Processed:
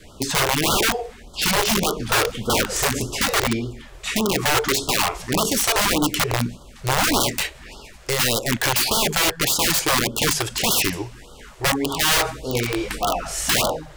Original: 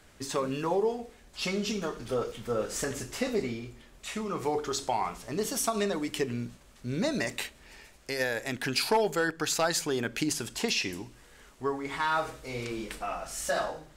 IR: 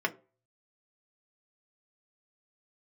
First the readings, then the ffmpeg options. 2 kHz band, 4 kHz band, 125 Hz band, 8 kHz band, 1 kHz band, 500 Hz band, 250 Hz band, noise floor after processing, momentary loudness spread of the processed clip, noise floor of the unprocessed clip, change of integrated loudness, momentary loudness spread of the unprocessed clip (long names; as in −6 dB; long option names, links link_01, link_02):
+11.5 dB, +14.5 dB, +11.5 dB, +13.5 dB, +9.5 dB, +5.5 dB, +8.0 dB, −44 dBFS, 8 LU, −56 dBFS, +11.0 dB, 10 LU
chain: -af "highshelf=frequency=5400:gain=-6,acontrast=72,adynamicequalizer=threshold=0.00562:dfrequency=1300:dqfactor=4.2:tfrequency=1300:tqfactor=4.2:attack=5:release=100:ratio=0.375:range=2:mode=cutabove:tftype=bell,aeval=exprs='(mod(10*val(0)+1,2)-1)/10':channel_layout=same,afftfilt=real='re*(1-between(b*sr/1024,200*pow(2100/200,0.5+0.5*sin(2*PI*1.7*pts/sr))/1.41,200*pow(2100/200,0.5+0.5*sin(2*PI*1.7*pts/sr))*1.41))':imag='im*(1-between(b*sr/1024,200*pow(2100/200,0.5+0.5*sin(2*PI*1.7*pts/sr))/1.41,200*pow(2100/200,0.5+0.5*sin(2*PI*1.7*pts/sr))*1.41))':win_size=1024:overlap=0.75,volume=7dB"